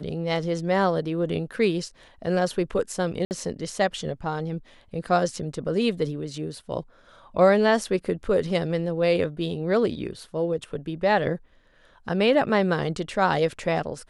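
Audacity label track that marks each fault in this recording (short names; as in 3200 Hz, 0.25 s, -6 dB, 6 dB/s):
3.250000	3.310000	gap 59 ms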